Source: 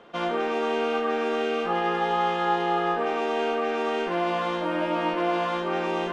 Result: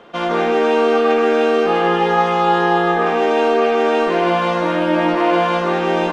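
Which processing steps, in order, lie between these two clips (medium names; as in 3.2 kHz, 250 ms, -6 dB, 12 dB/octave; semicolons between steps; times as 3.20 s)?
loudspeakers at several distances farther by 53 m -3 dB, 73 m -9 dB; trim +7 dB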